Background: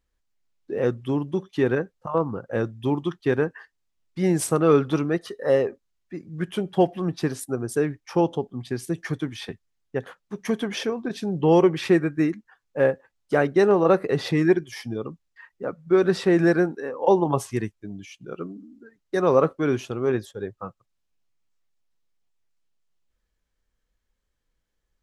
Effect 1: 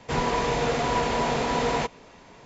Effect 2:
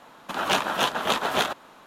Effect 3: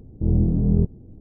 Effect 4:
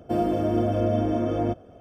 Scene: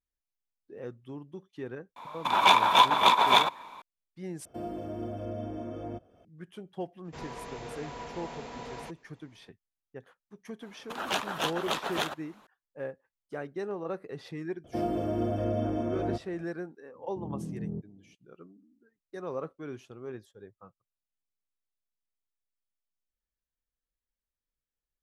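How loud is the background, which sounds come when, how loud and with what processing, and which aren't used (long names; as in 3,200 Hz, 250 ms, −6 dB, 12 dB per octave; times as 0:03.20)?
background −17.5 dB
0:01.96: mix in 2 −5 dB + hollow resonant body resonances 980/2,300/3,500 Hz, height 17 dB, ringing for 20 ms
0:04.45: overwrite with 4 −13.5 dB + one half of a high-frequency compander encoder only
0:07.04: mix in 1 −17 dB, fades 0.02 s
0:10.61: mix in 2 −13 dB + harmonic and percussive parts rebalanced percussive +7 dB
0:14.64: mix in 4 −6.5 dB
0:16.95: mix in 3 −14.5 dB + high-pass filter 130 Hz 24 dB per octave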